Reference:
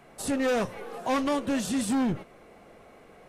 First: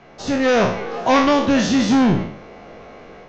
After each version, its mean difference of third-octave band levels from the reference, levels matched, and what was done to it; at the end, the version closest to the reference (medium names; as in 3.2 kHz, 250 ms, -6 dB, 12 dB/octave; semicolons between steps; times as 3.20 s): 4.0 dB: spectral sustain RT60 0.59 s; level rider gain up to 4.5 dB; steep low-pass 6.5 kHz 72 dB/octave; trim +6 dB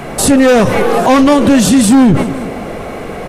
5.5 dB: bass shelf 360 Hz +5 dB; on a send: feedback delay 179 ms, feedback 50%, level -23 dB; on the sum: loudness maximiser +28 dB; trim -1 dB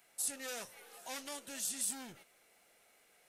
9.0 dB: pre-emphasis filter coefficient 0.97; band-stop 1.1 kHz, Q 8; dynamic bell 2.9 kHz, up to -3 dB, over -54 dBFS, Q 0.73; trim +1 dB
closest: first